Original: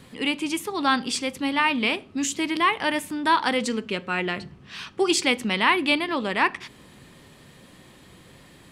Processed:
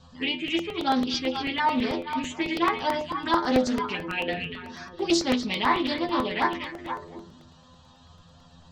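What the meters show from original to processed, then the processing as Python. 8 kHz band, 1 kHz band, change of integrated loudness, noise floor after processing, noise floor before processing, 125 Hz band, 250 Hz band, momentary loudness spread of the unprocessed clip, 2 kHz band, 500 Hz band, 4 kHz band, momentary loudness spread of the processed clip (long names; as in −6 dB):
−8.5 dB, −1.5 dB, −3.0 dB, −54 dBFS, −51 dBFS, −0.5 dB, 0.0 dB, 9 LU, −6.0 dB, −0.5 dB, −3.0 dB, 11 LU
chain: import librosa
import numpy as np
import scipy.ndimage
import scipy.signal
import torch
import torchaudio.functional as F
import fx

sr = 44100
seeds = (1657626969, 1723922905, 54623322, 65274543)

p1 = scipy.signal.sosfilt(scipy.signal.butter(8, 6700.0, 'lowpass', fs=sr, output='sos'), x)
p2 = fx.low_shelf(p1, sr, hz=180.0, db=3.5)
p3 = fx.hum_notches(p2, sr, base_hz=60, count=10)
p4 = fx.stiff_resonator(p3, sr, f0_hz=83.0, decay_s=0.29, stiffness=0.002)
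p5 = fx.env_phaser(p4, sr, low_hz=330.0, high_hz=2700.0, full_db=-28.0)
p6 = p5 + fx.echo_stepped(p5, sr, ms=239, hz=2900.0, octaves=-1.4, feedback_pct=70, wet_db=-4, dry=0)
p7 = fx.buffer_crackle(p6, sr, first_s=0.48, period_s=0.11, block=64, kind='repeat')
p8 = fx.doppler_dist(p7, sr, depth_ms=0.2)
y = p8 * 10.0 ** (8.5 / 20.0)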